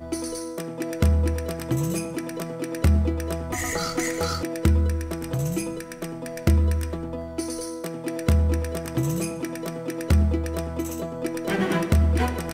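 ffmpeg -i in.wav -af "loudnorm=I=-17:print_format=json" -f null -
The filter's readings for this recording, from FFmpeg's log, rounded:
"input_i" : "-25.7",
"input_tp" : "-4.6",
"input_lra" : "2.5",
"input_thresh" : "-35.7",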